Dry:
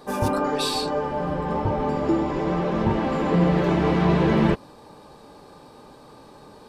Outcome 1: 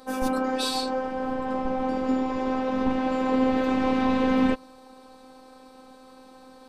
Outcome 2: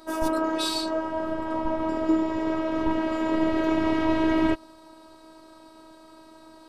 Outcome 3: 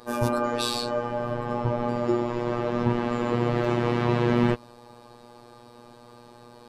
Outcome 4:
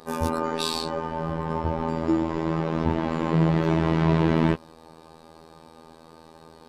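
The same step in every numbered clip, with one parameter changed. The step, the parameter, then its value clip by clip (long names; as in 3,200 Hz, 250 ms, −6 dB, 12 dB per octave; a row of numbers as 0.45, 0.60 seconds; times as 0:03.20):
phases set to zero, frequency: 260, 320, 120, 81 Hertz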